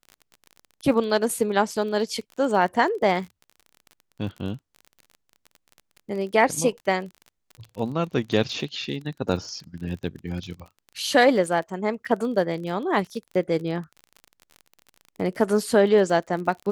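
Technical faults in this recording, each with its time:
crackle 34 per s -33 dBFS

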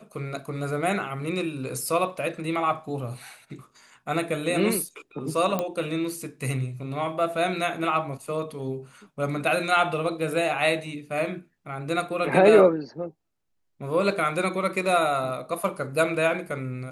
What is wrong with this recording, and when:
5.59 s: pop -12 dBFS

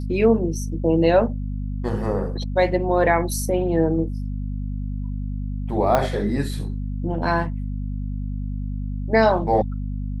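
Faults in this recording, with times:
hum 50 Hz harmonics 5 -27 dBFS
5.95 s: pop -6 dBFS

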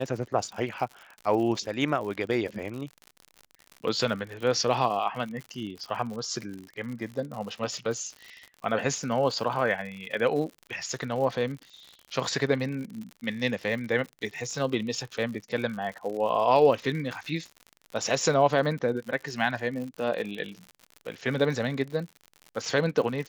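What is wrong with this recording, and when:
crackle 78 per s -35 dBFS

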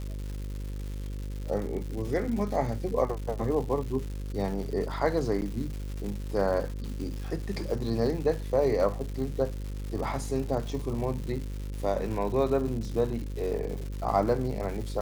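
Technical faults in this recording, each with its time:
buzz 50 Hz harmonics 11 -35 dBFS
crackle 290 per s -36 dBFS
5.41–5.42 s: dropout 9.7 ms

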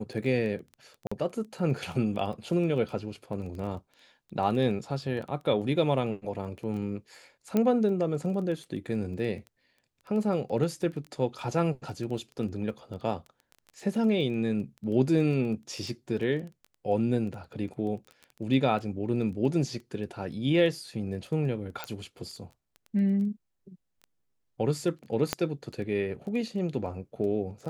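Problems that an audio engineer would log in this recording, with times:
crackle 10 per s -36 dBFS
1.07–1.11 s: dropout 45 ms
7.57 s: pop -14 dBFS
21.84 s: pop -18 dBFS
25.33 s: pop -10 dBFS

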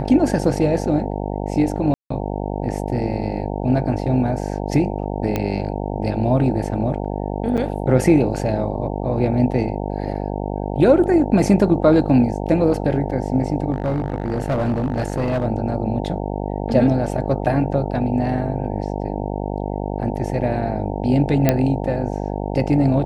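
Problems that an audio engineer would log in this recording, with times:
buzz 50 Hz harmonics 18 -25 dBFS
1.94–2.10 s: dropout 164 ms
5.36 s: pop -8 dBFS
7.57–7.58 s: dropout 7 ms
13.72–15.45 s: clipped -16 dBFS
21.49 s: pop -2 dBFS

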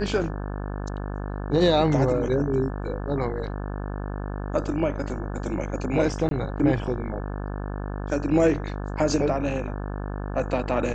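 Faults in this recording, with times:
buzz 50 Hz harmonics 35 -31 dBFS
6.29–6.31 s: dropout 22 ms

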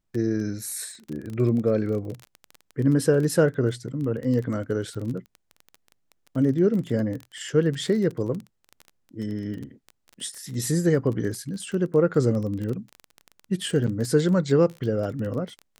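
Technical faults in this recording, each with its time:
crackle 20 per s -30 dBFS

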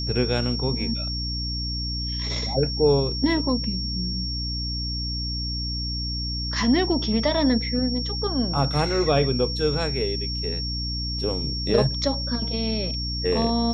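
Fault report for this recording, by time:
hum 60 Hz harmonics 5 -30 dBFS
whine 5.5 kHz -29 dBFS

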